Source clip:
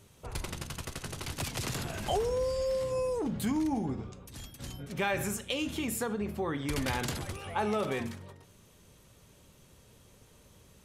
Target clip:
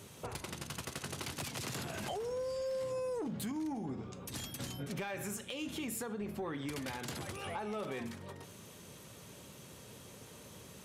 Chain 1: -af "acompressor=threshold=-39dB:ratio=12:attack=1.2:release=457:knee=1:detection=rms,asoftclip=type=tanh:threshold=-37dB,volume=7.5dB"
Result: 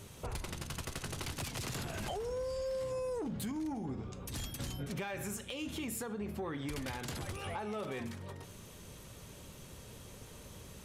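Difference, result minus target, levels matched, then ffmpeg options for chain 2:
125 Hz band +2.5 dB
-af "acompressor=threshold=-39dB:ratio=12:attack=1.2:release=457:knee=1:detection=rms,highpass=120,asoftclip=type=tanh:threshold=-37dB,volume=7.5dB"

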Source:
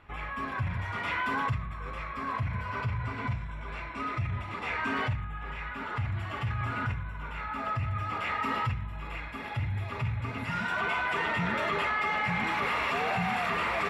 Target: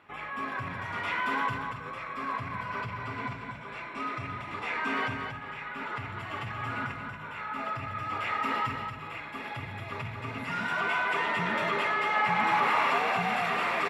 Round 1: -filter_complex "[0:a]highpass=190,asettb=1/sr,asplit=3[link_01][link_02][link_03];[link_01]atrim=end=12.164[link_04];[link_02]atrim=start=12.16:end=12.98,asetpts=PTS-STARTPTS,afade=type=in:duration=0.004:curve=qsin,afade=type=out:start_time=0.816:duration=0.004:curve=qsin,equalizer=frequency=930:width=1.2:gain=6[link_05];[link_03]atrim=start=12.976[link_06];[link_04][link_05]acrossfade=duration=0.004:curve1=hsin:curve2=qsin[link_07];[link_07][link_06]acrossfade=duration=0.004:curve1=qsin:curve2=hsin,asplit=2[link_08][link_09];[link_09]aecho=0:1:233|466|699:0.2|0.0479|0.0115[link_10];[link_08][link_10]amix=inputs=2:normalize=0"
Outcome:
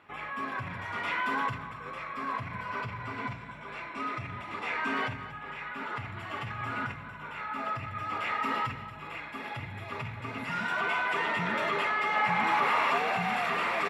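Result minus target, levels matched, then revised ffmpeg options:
echo-to-direct −8 dB
-filter_complex "[0:a]highpass=190,asettb=1/sr,asplit=3[link_01][link_02][link_03];[link_01]atrim=end=12.164[link_04];[link_02]atrim=start=12.16:end=12.98,asetpts=PTS-STARTPTS,afade=type=in:duration=0.004:curve=qsin,afade=type=out:start_time=0.816:duration=0.004:curve=qsin,equalizer=frequency=930:width=1.2:gain=6[link_05];[link_03]atrim=start=12.976[link_06];[link_04][link_05]acrossfade=duration=0.004:curve1=hsin:curve2=qsin[link_07];[link_07][link_06]acrossfade=duration=0.004:curve1=qsin:curve2=hsin,asplit=2[link_08][link_09];[link_09]aecho=0:1:233|466|699:0.501|0.12|0.0289[link_10];[link_08][link_10]amix=inputs=2:normalize=0"

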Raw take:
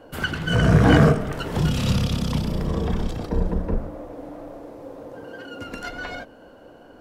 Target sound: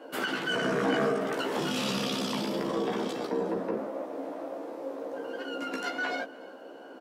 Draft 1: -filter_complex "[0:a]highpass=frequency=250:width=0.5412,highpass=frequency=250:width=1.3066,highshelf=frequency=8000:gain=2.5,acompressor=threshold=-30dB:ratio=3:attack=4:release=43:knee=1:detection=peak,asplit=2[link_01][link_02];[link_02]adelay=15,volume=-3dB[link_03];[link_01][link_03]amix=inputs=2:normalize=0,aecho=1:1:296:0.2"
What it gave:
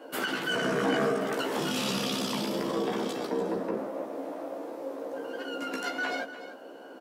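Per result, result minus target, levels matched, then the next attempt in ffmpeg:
echo-to-direct +10.5 dB; 8,000 Hz band +2.5 dB
-filter_complex "[0:a]highpass=frequency=250:width=0.5412,highpass=frequency=250:width=1.3066,highshelf=frequency=8000:gain=2.5,acompressor=threshold=-30dB:ratio=3:attack=4:release=43:knee=1:detection=peak,asplit=2[link_01][link_02];[link_02]adelay=15,volume=-3dB[link_03];[link_01][link_03]amix=inputs=2:normalize=0,aecho=1:1:296:0.0596"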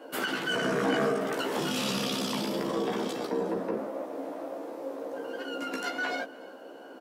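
8,000 Hz band +2.5 dB
-filter_complex "[0:a]highpass=frequency=250:width=0.5412,highpass=frequency=250:width=1.3066,highshelf=frequency=8000:gain=-4.5,acompressor=threshold=-30dB:ratio=3:attack=4:release=43:knee=1:detection=peak,asplit=2[link_01][link_02];[link_02]adelay=15,volume=-3dB[link_03];[link_01][link_03]amix=inputs=2:normalize=0,aecho=1:1:296:0.0596"

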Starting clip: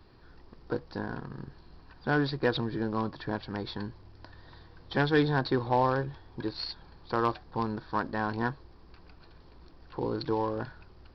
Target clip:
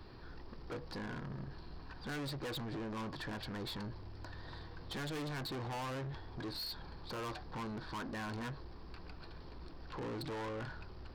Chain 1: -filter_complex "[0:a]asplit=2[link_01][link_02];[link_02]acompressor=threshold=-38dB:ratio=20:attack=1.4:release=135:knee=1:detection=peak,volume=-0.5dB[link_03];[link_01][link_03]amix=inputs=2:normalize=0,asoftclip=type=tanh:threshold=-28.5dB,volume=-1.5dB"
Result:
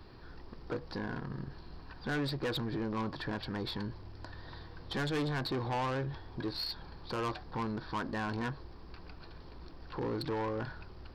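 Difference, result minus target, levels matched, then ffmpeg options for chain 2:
soft clipping: distortion −5 dB
-filter_complex "[0:a]asplit=2[link_01][link_02];[link_02]acompressor=threshold=-38dB:ratio=20:attack=1.4:release=135:knee=1:detection=peak,volume=-0.5dB[link_03];[link_01][link_03]amix=inputs=2:normalize=0,asoftclip=type=tanh:threshold=-37.5dB,volume=-1.5dB"

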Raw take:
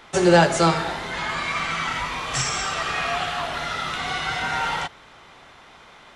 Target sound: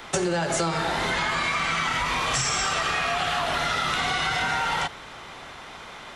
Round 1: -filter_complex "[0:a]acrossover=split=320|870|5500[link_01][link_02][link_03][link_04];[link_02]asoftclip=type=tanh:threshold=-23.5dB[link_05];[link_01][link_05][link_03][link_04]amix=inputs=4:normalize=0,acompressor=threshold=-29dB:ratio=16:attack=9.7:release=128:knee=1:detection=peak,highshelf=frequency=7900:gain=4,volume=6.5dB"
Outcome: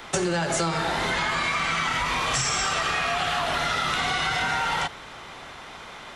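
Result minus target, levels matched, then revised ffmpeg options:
soft clipping: distortion +8 dB
-filter_complex "[0:a]acrossover=split=320|870|5500[link_01][link_02][link_03][link_04];[link_02]asoftclip=type=tanh:threshold=-15.5dB[link_05];[link_01][link_05][link_03][link_04]amix=inputs=4:normalize=0,acompressor=threshold=-29dB:ratio=16:attack=9.7:release=128:knee=1:detection=peak,highshelf=frequency=7900:gain=4,volume=6.5dB"

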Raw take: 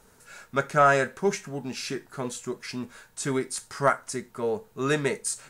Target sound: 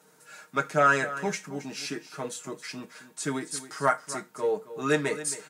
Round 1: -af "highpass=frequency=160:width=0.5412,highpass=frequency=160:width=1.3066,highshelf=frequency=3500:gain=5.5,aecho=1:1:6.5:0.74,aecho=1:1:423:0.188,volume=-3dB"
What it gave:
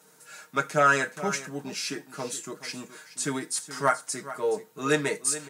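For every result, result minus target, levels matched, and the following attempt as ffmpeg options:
echo 153 ms late; 8,000 Hz band +4.0 dB
-af "highpass=frequency=160:width=0.5412,highpass=frequency=160:width=1.3066,highshelf=frequency=3500:gain=5.5,aecho=1:1:6.5:0.74,aecho=1:1:270:0.188,volume=-3dB"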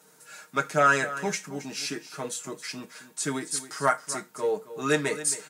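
8,000 Hz band +4.0 dB
-af "highpass=frequency=160:width=0.5412,highpass=frequency=160:width=1.3066,aecho=1:1:6.5:0.74,aecho=1:1:270:0.188,volume=-3dB"

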